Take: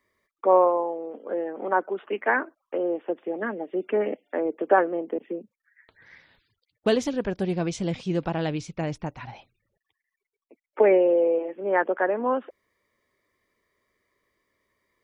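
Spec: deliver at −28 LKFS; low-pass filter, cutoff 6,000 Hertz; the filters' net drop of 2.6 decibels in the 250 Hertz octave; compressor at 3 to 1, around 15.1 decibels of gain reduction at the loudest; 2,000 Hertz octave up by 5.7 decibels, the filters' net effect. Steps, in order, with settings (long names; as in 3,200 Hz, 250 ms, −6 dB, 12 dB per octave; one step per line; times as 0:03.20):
low-pass filter 6,000 Hz
parametric band 250 Hz −4.5 dB
parametric band 2,000 Hz +7.5 dB
downward compressor 3 to 1, threshold −34 dBFS
level +8.5 dB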